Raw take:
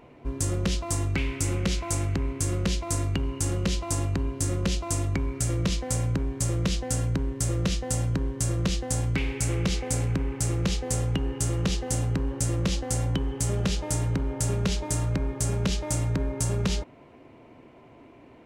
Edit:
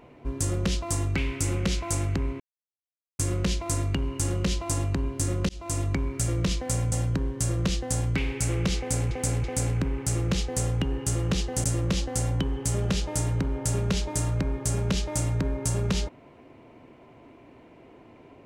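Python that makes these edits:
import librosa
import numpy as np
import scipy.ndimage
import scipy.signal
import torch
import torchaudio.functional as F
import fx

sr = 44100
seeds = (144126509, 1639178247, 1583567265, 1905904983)

y = fx.edit(x, sr, fx.insert_silence(at_s=2.4, length_s=0.79),
    fx.fade_in_span(start_s=4.7, length_s=0.39, curve='qsin'),
    fx.cut(start_s=6.13, length_s=1.79),
    fx.repeat(start_s=9.78, length_s=0.33, count=3),
    fx.cut(start_s=11.98, length_s=0.41), tone=tone)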